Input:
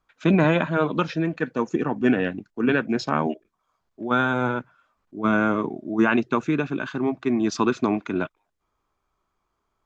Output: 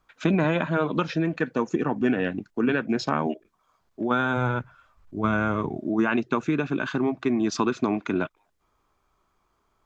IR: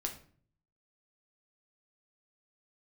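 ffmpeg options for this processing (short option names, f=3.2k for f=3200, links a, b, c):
-filter_complex "[0:a]asplit=3[a][b][c];[a]afade=t=out:st=4.36:d=0.02[d];[b]asubboost=boost=7:cutoff=97,afade=t=in:st=4.36:d=0.02,afade=t=out:st=5.77:d=0.02[e];[c]afade=t=in:st=5.77:d=0.02[f];[d][e][f]amix=inputs=3:normalize=0,acompressor=threshold=-29dB:ratio=2.5,volume=5.5dB"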